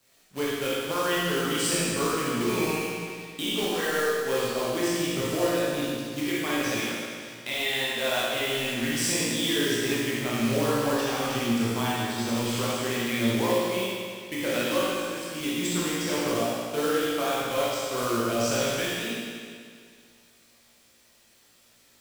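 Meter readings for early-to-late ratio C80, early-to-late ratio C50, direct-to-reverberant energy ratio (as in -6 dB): -2.0 dB, -4.5 dB, -8.5 dB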